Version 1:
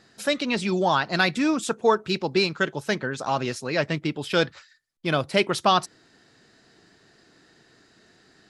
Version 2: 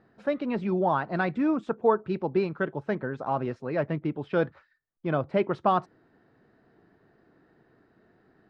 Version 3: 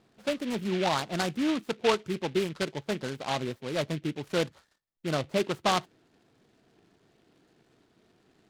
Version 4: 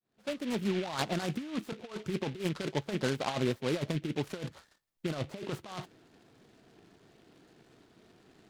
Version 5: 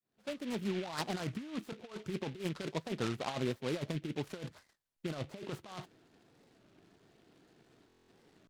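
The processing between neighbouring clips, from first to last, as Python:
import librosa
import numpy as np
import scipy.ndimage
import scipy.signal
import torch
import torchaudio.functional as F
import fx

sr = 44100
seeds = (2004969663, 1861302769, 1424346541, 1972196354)

y1 = scipy.signal.sosfilt(scipy.signal.butter(2, 1200.0, 'lowpass', fs=sr, output='sos'), x)
y1 = y1 * 10.0 ** (-2.0 / 20.0)
y2 = fx.noise_mod_delay(y1, sr, seeds[0], noise_hz=2400.0, depth_ms=0.1)
y2 = y2 * 10.0 ** (-2.5 / 20.0)
y3 = fx.fade_in_head(y2, sr, length_s=1.01)
y3 = fx.over_compress(y3, sr, threshold_db=-32.0, ratio=-0.5)
y4 = fx.buffer_glitch(y3, sr, at_s=(7.88,), block=1024, repeats=8)
y4 = fx.record_warp(y4, sr, rpm=33.33, depth_cents=250.0)
y4 = y4 * 10.0 ** (-4.5 / 20.0)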